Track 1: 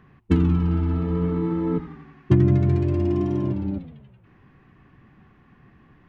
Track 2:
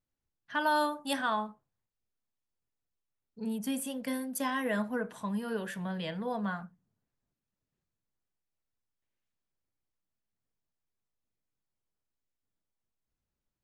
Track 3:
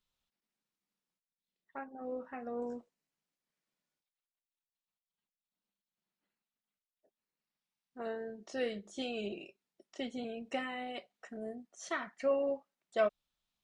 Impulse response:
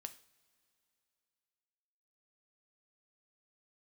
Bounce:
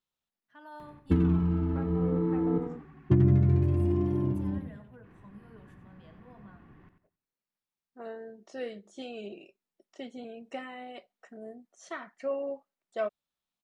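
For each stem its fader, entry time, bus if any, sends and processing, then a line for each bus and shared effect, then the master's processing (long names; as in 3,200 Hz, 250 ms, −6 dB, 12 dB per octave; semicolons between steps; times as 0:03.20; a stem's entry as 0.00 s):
−5.5 dB, 0.80 s, no send, echo send −9 dB, upward compression, threshold −42 dBFS
−15.5 dB, 0.00 s, no send, echo send −12 dB, flanger 0.34 Hz, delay 9.2 ms, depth 1.6 ms, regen +80%
−0.5 dB, 0.00 s, no send, no echo send, high-pass filter 170 Hz 6 dB per octave; high-shelf EQ 5,400 Hz +5 dB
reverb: not used
echo: repeating echo 91 ms, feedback 27%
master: high-shelf EQ 2,200 Hz −8.5 dB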